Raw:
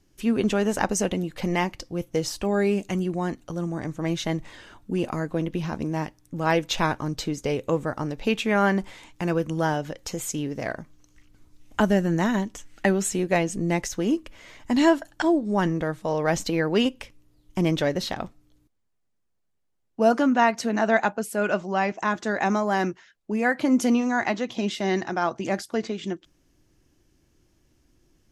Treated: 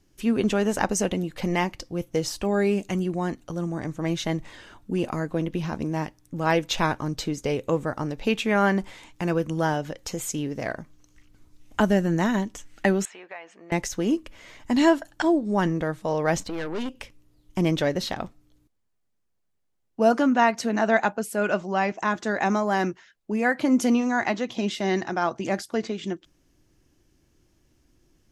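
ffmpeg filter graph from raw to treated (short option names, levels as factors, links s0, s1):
-filter_complex "[0:a]asettb=1/sr,asplit=3[s0][s1][s2];[s0]atrim=end=13.054[s3];[s1]atrim=start=13.05:end=13.72,asetpts=PTS-STARTPTS,afade=t=in:d=0.004:c=qsin,afade=t=out:st=0.666:d=0.004:c=qsin,asuperpass=centerf=1400:order=4:qfactor=0.76,acompressor=threshold=0.01:ratio=2.5:attack=3.2:release=140:knee=1:detection=peak[s4];[s2]atrim=start=13.716[s5];[s3][s4]acrossfade=d=0.004:c1=hsin:c2=qsin[s6];[s6][s5]acrossfade=d=0.004:c1=qsin:c2=hsin,asettb=1/sr,asplit=3[s7][s8][s9];[s7]atrim=end=16.404[s10];[s8]atrim=start=16.4:end=16.95,asetpts=PTS-STARTPTS,afade=t=in:d=0.004:c=qsin,afade=t=out:st=0.546:d=0.004:c=qsin,acrossover=split=4800[s11][s12];[s12]acompressor=threshold=0.00316:ratio=4:attack=1:release=60[s13];[s11][s13]amix=inputs=2:normalize=0,equalizer=f=2700:w=1.9:g=-3,aeval=exprs='(tanh(22.4*val(0)+0.55)-tanh(0.55))/22.4':c=same[s14];[s9]atrim=start=16.946[s15];[s10][s14]acrossfade=d=0.004:c1=hsin:c2=qsin[s16];[s16][s15]acrossfade=d=0.004:c1=qsin:c2=hsin"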